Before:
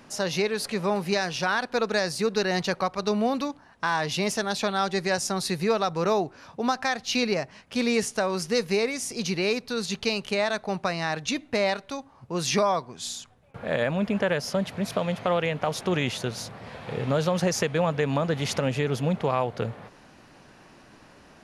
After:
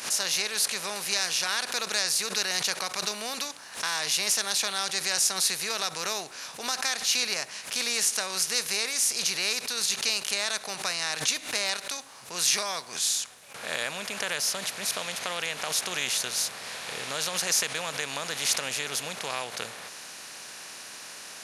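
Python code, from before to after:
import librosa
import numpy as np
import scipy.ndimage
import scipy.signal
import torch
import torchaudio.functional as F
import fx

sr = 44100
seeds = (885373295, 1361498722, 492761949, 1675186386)

y = fx.bin_compress(x, sr, power=0.6)
y = scipy.signal.lfilter([1.0, -0.97], [1.0], y)
y = fx.pre_swell(y, sr, db_per_s=130.0)
y = F.gain(torch.from_numpy(y), 5.5).numpy()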